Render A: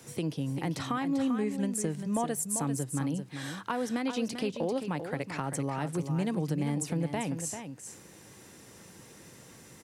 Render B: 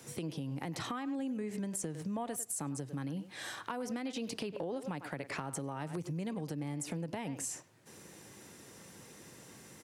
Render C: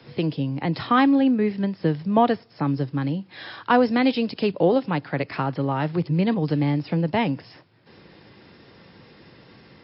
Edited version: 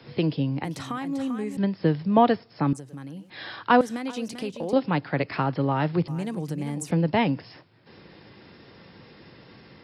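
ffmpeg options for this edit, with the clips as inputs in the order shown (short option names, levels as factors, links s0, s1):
-filter_complex "[0:a]asplit=3[s0][s1][s2];[2:a]asplit=5[s3][s4][s5][s6][s7];[s3]atrim=end=0.642[s8];[s0]atrim=start=0.638:end=1.572[s9];[s4]atrim=start=1.568:end=2.732[s10];[1:a]atrim=start=2.728:end=3.302[s11];[s5]atrim=start=3.298:end=3.812[s12];[s1]atrim=start=3.808:end=4.732[s13];[s6]atrim=start=4.728:end=6.082[s14];[s2]atrim=start=6.078:end=6.912[s15];[s7]atrim=start=6.908[s16];[s8][s9]acrossfade=d=0.004:c1=hsin:c2=hsin[s17];[s17][s10]acrossfade=d=0.004:c1=hsin:c2=hsin[s18];[s18][s11]acrossfade=d=0.004:c1=hsin:c2=hsin[s19];[s19][s12]acrossfade=d=0.004:c1=hsin:c2=hsin[s20];[s20][s13]acrossfade=d=0.004:c1=hsin:c2=hsin[s21];[s21][s14]acrossfade=d=0.004:c1=hsin:c2=hsin[s22];[s22][s15]acrossfade=d=0.004:c1=hsin:c2=hsin[s23];[s23][s16]acrossfade=d=0.004:c1=hsin:c2=hsin"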